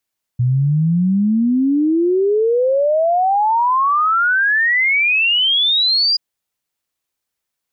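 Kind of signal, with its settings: log sweep 120 Hz -> 4.9 kHz 5.78 s -12 dBFS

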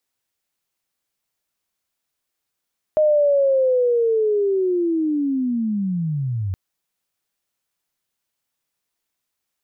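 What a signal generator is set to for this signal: sweep linear 620 Hz -> 90 Hz -12.5 dBFS -> -21 dBFS 3.57 s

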